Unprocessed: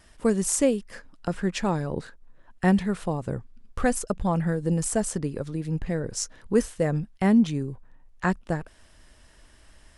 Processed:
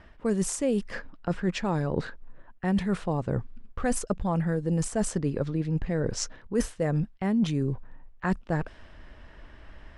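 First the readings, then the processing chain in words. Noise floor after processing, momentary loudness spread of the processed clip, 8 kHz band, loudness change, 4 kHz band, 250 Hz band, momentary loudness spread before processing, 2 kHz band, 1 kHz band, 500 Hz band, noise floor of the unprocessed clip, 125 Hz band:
-52 dBFS, 7 LU, -5.0 dB, -2.5 dB, -1.0 dB, -3.0 dB, 11 LU, -3.0 dB, -3.0 dB, -2.5 dB, -55 dBFS, -0.5 dB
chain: level-controlled noise filter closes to 2.5 kHz, open at -19 dBFS; treble shelf 4.9 kHz -6 dB; reverse; compression 5:1, threshold -31 dBFS, peak gain reduction 14.5 dB; reverse; trim +7 dB

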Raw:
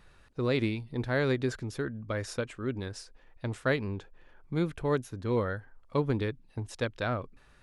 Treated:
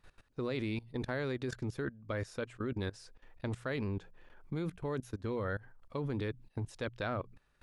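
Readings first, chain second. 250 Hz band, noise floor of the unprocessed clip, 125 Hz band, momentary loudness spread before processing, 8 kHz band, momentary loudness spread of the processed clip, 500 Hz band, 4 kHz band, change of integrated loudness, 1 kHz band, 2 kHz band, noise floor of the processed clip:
-5.5 dB, -59 dBFS, -5.5 dB, 12 LU, -8.5 dB, 7 LU, -7.0 dB, -6.5 dB, -6.0 dB, -6.0 dB, -6.5 dB, -73 dBFS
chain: hum notches 60/120/180 Hz; level held to a coarse grid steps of 19 dB; trim +3 dB

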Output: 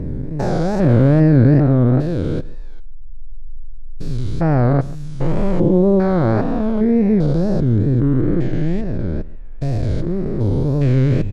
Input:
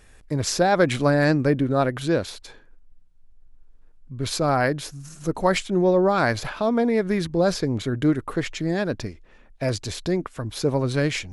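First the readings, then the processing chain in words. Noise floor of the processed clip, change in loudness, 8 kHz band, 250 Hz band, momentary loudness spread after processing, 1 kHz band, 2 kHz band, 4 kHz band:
-26 dBFS, +6.0 dB, under -10 dB, +8.0 dB, 13 LU, -2.0 dB, -6.0 dB, under -10 dB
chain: spectrogram pixelated in time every 400 ms; wow and flutter 140 cents; tilt EQ -4 dB/octave; delay 139 ms -20.5 dB; trim +2.5 dB

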